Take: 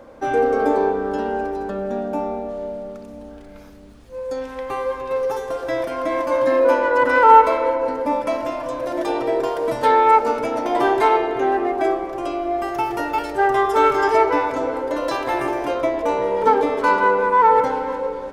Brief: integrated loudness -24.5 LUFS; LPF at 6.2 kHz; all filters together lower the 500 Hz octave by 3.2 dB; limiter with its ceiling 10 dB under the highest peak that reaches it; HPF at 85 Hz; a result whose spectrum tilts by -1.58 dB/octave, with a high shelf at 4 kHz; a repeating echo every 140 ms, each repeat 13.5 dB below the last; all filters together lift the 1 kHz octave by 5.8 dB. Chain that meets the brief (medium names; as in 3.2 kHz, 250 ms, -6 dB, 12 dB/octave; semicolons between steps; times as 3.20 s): high-pass 85 Hz; low-pass 6.2 kHz; peaking EQ 500 Hz -6 dB; peaking EQ 1 kHz +8 dB; treble shelf 4 kHz +8 dB; peak limiter -6 dBFS; feedback delay 140 ms, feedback 21%, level -13.5 dB; trim -6.5 dB